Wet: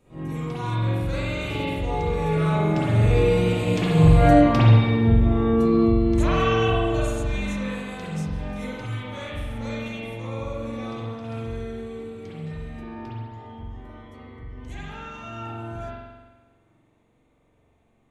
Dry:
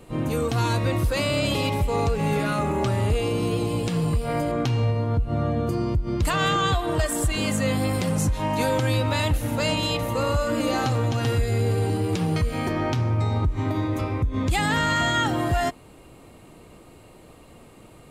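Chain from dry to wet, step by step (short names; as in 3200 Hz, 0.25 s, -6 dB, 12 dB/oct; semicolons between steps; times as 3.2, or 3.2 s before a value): Doppler pass-by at 4.26, 10 m/s, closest 7 m; formant shift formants -2 st; spring tank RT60 1.3 s, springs 44 ms, chirp 25 ms, DRR -9 dB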